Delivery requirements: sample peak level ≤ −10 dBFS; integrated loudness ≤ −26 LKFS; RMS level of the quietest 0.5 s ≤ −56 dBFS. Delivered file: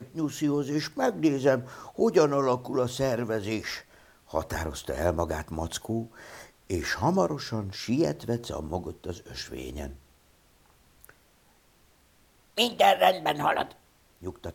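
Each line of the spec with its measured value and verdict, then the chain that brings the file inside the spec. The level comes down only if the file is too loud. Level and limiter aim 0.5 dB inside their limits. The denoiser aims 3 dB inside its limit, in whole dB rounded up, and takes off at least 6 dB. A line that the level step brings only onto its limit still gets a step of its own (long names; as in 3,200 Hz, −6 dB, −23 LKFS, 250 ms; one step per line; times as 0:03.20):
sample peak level −8.5 dBFS: out of spec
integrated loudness −28.0 LKFS: in spec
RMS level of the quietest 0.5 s −62 dBFS: in spec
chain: brickwall limiter −10.5 dBFS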